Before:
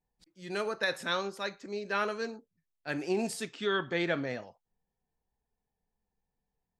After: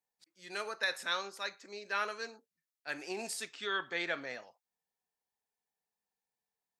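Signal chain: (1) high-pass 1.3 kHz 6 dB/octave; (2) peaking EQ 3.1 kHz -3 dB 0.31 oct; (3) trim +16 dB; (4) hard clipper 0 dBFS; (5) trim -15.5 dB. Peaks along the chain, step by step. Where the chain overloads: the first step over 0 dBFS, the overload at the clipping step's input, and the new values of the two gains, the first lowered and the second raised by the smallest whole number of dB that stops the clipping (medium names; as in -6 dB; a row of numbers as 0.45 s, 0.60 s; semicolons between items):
-19.0 dBFS, -19.5 dBFS, -3.5 dBFS, -3.5 dBFS, -19.0 dBFS; nothing clips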